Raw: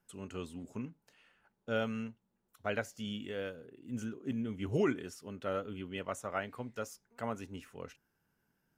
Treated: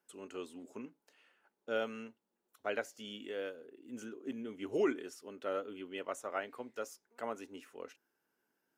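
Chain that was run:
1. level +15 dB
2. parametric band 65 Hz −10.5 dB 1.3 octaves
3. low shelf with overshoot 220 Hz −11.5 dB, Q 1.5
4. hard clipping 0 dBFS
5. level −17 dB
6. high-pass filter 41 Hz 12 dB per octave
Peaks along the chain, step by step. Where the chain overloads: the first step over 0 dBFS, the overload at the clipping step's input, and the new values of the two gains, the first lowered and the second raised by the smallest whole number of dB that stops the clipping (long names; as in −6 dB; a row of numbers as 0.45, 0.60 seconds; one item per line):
−5.0, −5.0, −4.0, −4.0, −21.0, −21.0 dBFS
no step passes full scale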